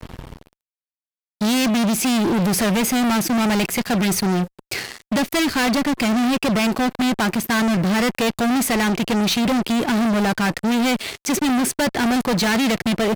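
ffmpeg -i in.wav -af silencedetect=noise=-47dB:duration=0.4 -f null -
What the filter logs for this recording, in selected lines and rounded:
silence_start: 0.53
silence_end: 1.41 | silence_duration: 0.88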